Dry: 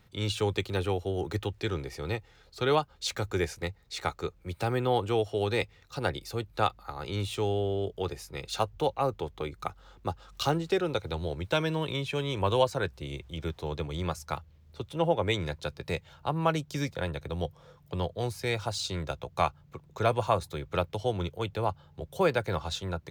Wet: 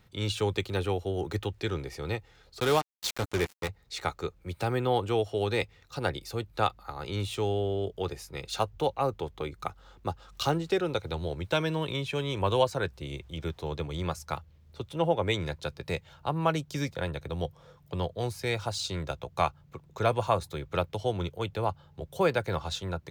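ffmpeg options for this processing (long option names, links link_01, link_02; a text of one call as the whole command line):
ffmpeg -i in.wav -filter_complex "[0:a]asettb=1/sr,asplit=3[link_01][link_02][link_03];[link_01]atrim=end=2.604[link_04];[link_02]atrim=start=2.6:end=3.69,asetpts=PTS-STARTPTS,afade=type=in:duration=0.004:curve=qsin,afade=type=out:start_time=1.086:duration=0.004:curve=qsin,acrusher=bits=4:mix=0:aa=0.5[link_05];[link_03]atrim=start=3.686[link_06];[link_04][link_05]acrossfade=duration=0.004:curve1=hsin:curve2=qsin[link_07];[link_07][link_06]acrossfade=duration=0.004:curve1=qsin:curve2=hsin" out.wav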